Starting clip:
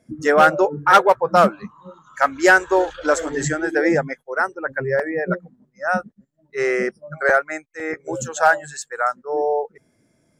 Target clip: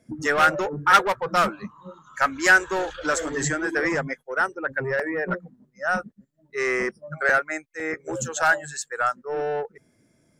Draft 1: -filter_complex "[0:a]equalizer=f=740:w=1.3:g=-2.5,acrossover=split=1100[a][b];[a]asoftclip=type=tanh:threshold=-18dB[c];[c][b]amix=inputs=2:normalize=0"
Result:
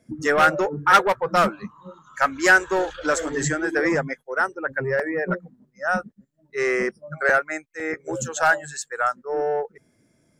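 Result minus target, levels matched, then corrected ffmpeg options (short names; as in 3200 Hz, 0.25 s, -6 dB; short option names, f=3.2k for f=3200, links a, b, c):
soft clip: distortion -5 dB
-filter_complex "[0:a]equalizer=f=740:w=1.3:g=-2.5,acrossover=split=1100[a][b];[a]asoftclip=type=tanh:threshold=-24dB[c];[c][b]amix=inputs=2:normalize=0"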